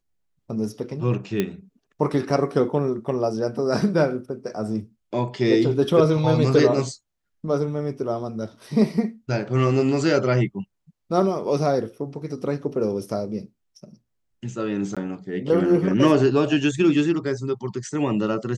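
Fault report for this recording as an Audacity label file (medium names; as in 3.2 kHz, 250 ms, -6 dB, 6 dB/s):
1.400000	1.400000	pop -9 dBFS
14.950000	14.970000	dropout 16 ms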